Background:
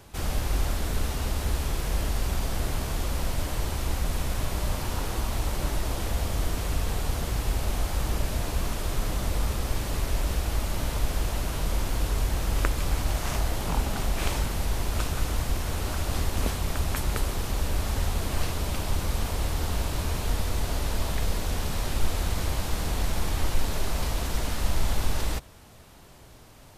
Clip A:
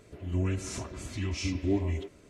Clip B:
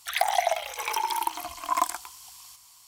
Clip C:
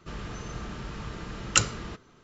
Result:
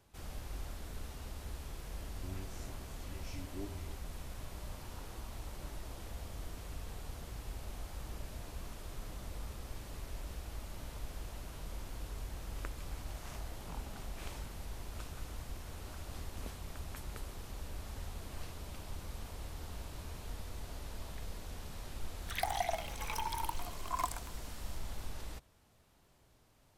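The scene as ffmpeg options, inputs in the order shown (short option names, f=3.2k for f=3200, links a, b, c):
-filter_complex "[0:a]volume=-17dB[a];[1:a]atrim=end=2.29,asetpts=PTS-STARTPTS,volume=-17dB,afade=t=in:d=0.004:c=hsin,afade=t=out:st=2.286:d=0.004:c=hsin,adelay=1890[b];[2:a]atrim=end=2.87,asetpts=PTS-STARTPTS,volume=-11dB,afade=t=in:d=0.004:c=hsin,afade=t=out:st=2.866:d=0.004:c=hsin,adelay=22220[c];[a][b][c]amix=inputs=3:normalize=0"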